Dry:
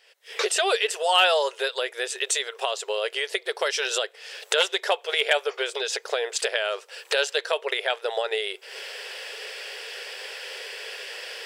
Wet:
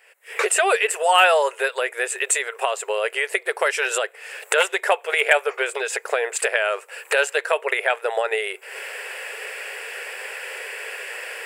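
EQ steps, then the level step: low shelf 450 Hz -8.5 dB; band shelf 4400 Hz -14.5 dB 1.2 oct; +7.5 dB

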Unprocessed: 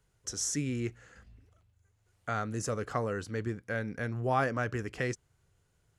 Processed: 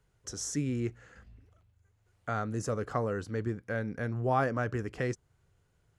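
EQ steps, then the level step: dynamic EQ 2400 Hz, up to -4 dB, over -51 dBFS, Q 1; high shelf 4100 Hz -7 dB; +1.5 dB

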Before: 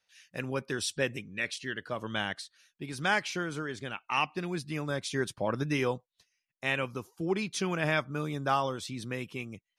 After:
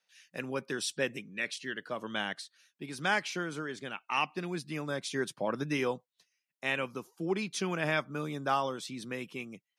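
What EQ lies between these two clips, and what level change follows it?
HPF 150 Hz 24 dB/oct; -1.5 dB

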